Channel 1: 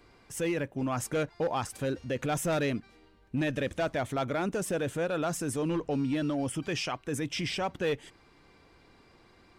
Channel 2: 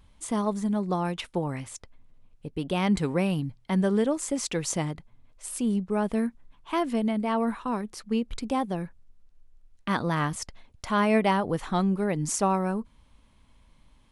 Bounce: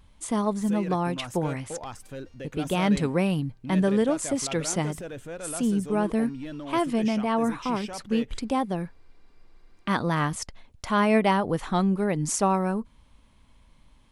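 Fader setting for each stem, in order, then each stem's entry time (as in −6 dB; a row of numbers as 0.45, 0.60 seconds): −7.0, +1.5 decibels; 0.30, 0.00 seconds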